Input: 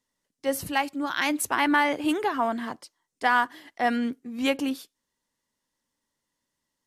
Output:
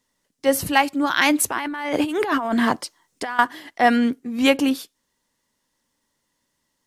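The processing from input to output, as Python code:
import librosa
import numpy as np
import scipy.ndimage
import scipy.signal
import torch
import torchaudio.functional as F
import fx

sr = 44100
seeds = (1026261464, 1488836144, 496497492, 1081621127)

y = fx.over_compress(x, sr, threshold_db=-32.0, ratio=-1.0, at=(1.51, 3.39))
y = F.gain(torch.from_numpy(y), 8.0).numpy()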